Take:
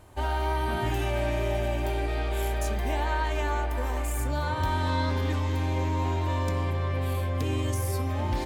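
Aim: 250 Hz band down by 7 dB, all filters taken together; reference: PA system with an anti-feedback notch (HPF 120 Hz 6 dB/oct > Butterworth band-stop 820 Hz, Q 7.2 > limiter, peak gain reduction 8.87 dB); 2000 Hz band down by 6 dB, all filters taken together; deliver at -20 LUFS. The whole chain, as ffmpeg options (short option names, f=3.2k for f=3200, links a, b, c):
-af "highpass=f=120:p=1,asuperstop=centerf=820:order=8:qfactor=7.2,equalizer=f=250:t=o:g=-8,equalizer=f=2k:t=o:g=-8,volume=17.5dB,alimiter=limit=-11dB:level=0:latency=1"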